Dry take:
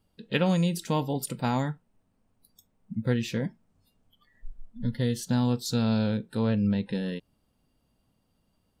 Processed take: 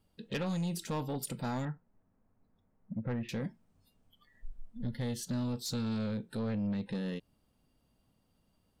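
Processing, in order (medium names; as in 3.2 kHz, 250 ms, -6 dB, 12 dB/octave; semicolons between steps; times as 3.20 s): 1.65–3.29 s: low-pass 2 kHz 24 dB/octave; in parallel at -1 dB: compression, threshold -32 dBFS, peak gain reduction 12.5 dB; on the sum: saturation -22 dBFS, distortion -10 dB; trim -7 dB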